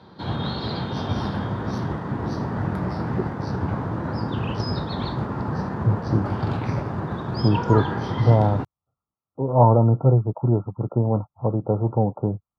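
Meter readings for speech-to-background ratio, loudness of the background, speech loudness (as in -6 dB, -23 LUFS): 6.0 dB, -27.5 LUFS, -21.5 LUFS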